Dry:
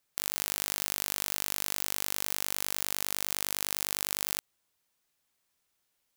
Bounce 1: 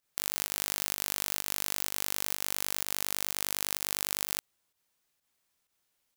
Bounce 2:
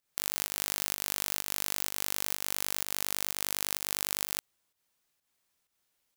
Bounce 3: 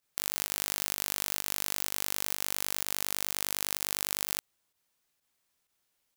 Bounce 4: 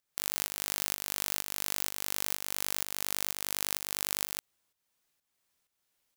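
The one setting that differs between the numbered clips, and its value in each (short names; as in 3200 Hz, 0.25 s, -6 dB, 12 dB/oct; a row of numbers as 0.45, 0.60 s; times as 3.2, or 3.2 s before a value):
pump, release: 99, 166, 66, 412 ms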